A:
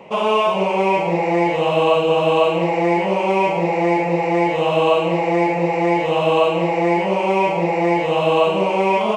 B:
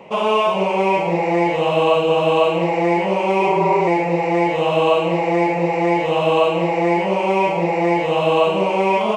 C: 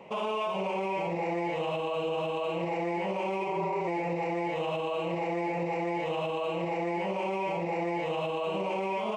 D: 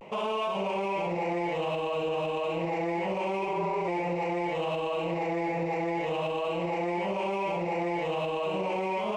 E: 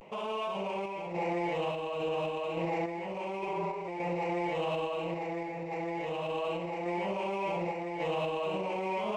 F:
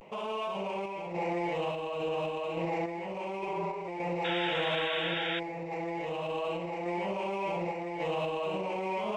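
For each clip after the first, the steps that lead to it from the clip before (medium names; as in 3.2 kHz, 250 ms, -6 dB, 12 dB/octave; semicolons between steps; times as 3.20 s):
spectral replace 3.43–3.85 s, 270–2000 Hz before
peak limiter -15.5 dBFS, peak gain reduction 11 dB; trim -8 dB
in parallel at -9 dB: saturation -37 dBFS, distortion -8 dB; on the sum: vibrato 0.31 Hz 31 cents
upward compressor, threshold -48 dBFS; random-step tremolo; trim -1.5 dB
painted sound noise, 4.24–5.40 s, 1.3–3.8 kHz -35 dBFS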